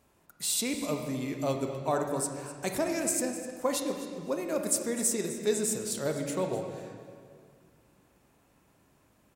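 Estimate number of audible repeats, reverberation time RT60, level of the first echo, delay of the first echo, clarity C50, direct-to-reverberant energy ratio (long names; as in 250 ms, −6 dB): 1, 2.0 s, −14.5 dB, 254 ms, 5.0 dB, 3.5 dB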